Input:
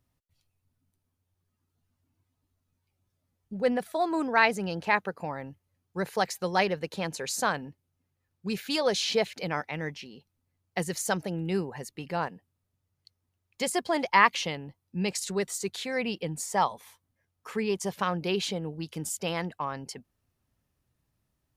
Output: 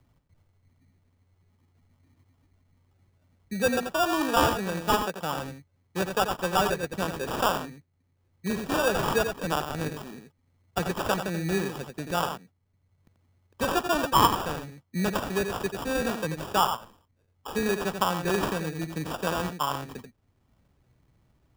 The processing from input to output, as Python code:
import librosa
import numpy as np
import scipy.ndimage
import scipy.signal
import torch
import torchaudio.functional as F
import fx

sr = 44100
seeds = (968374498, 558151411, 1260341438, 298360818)

y = fx.high_shelf(x, sr, hz=6200.0, db=3.5)
y = y + 10.0 ** (-7.5 / 20.0) * np.pad(y, (int(87 * sr / 1000.0), 0))[:len(y)]
y = fx.env_lowpass(y, sr, base_hz=1600.0, full_db=-23.5)
y = fx.sample_hold(y, sr, seeds[0], rate_hz=2100.0, jitter_pct=0)
y = fx.dynamic_eq(y, sr, hz=1200.0, q=0.83, threshold_db=-38.0, ratio=4.0, max_db=4)
y = fx.band_squash(y, sr, depth_pct=40)